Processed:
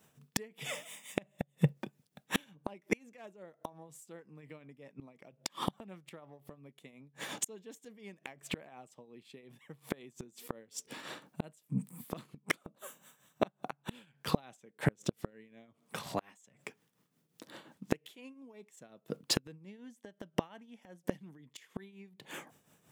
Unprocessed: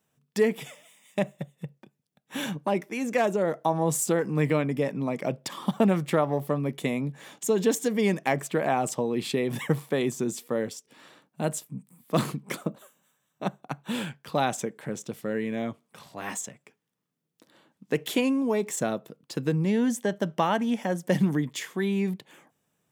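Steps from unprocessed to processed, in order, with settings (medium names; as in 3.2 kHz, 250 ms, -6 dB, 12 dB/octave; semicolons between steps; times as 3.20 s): dynamic bell 2.8 kHz, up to +5 dB, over -46 dBFS, Q 1.2; inverted gate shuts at -24 dBFS, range -35 dB; tremolo triangle 5.6 Hz, depth 70%; trim +11 dB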